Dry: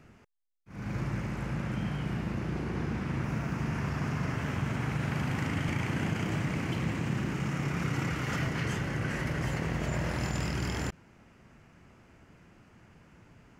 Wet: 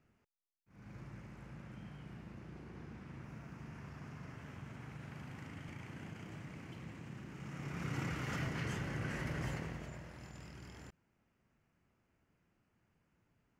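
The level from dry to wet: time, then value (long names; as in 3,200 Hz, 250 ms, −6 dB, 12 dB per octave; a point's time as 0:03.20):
0:07.28 −17.5 dB
0:07.97 −7.5 dB
0:09.50 −7.5 dB
0:10.08 −20 dB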